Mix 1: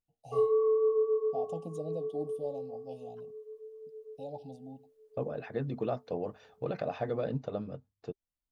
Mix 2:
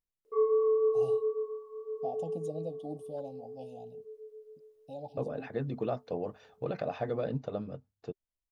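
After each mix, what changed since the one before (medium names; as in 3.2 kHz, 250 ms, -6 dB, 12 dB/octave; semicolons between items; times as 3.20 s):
first voice: entry +0.70 s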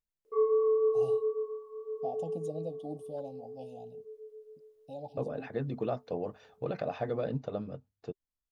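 no change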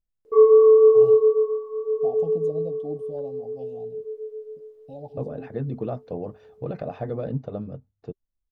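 background +10.5 dB; master: add tilt EQ -2.5 dB/octave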